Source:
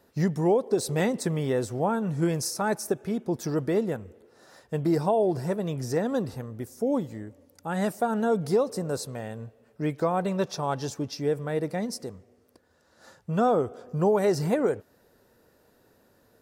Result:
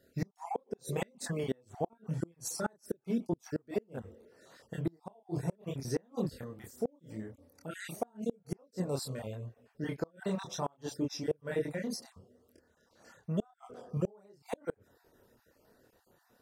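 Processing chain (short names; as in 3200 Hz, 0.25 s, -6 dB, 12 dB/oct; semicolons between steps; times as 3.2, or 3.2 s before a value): random spectral dropouts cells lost 35%; chorus voices 2, 0.88 Hz, delay 27 ms, depth 3.4 ms; flipped gate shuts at -21 dBFS, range -34 dB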